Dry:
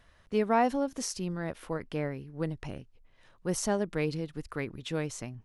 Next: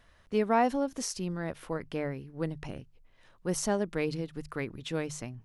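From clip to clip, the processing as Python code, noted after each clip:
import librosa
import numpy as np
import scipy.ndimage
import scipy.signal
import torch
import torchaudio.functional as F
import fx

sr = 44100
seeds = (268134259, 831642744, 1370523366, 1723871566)

y = fx.hum_notches(x, sr, base_hz=50, count=3)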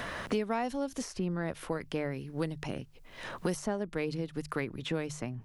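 y = fx.band_squash(x, sr, depth_pct=100)
y = y * 10.0 ** (-2.0 / 20.0)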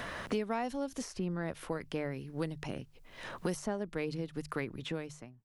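y = fx.fade_out_tail(x, sr, length_s=0.64)
y = y * 10.0 ** (-2.5 / 20.0)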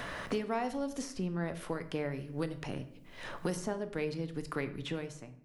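y = fx.room_shoebox(x, sr, seeds[0], volume_m3=140.0, walls='mixed', distance_m=0.33)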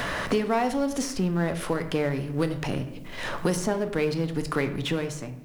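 y = fx.law_mismatch(x, sr, coded='mu')
y = y * 10.0 ** (8.0 / 20.0)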